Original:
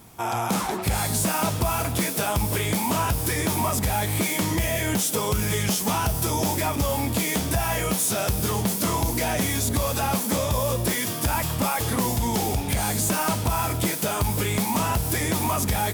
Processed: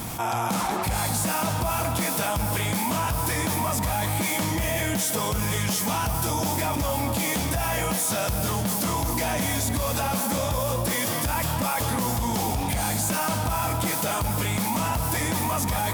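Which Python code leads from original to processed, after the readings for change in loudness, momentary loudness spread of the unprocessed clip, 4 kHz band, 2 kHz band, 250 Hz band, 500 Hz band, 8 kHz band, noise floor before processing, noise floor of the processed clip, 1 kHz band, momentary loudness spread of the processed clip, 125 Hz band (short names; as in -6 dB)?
-1.0 dB, 2 LU, -1.0 dB, -0.5 dB, -2.0 dB, -1.5 dB, -1.0 dB, -28 dBFS, -27 dBFS, 0.0 dB, 1 LU, -1.5 dB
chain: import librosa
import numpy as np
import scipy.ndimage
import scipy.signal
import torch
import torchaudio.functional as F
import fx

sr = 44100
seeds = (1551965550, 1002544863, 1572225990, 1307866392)

p1 = fx.peak_eq(x, sr, hz=400.0, db=-9.0, octaves=0.22)
p2 = p1 + fx.echo_banded(p1, sr, ms=202, feedback_pct=66, hz=900.0, wet_db=-6.5, dry=0)
p3 = fx.env_flatten(p2, sr, amount_pct=70)
y = p3 * 10.0 ** (-4.5 / 20.0)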